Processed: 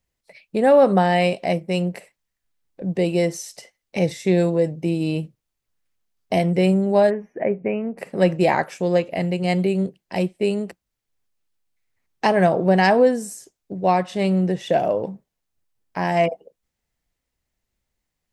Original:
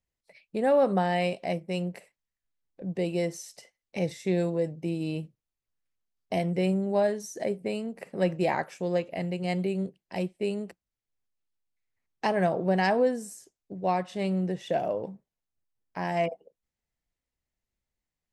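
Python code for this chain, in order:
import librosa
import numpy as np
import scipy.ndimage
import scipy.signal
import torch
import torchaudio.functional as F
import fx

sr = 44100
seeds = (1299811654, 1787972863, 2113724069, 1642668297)

y = fx.ellip_lowpass(x, sr, hz=2500.0, order=4, stop_db=40, at=(7.09, 7.97), fade=0.02)
y = y * librosa.db_to_amplitude(8.5)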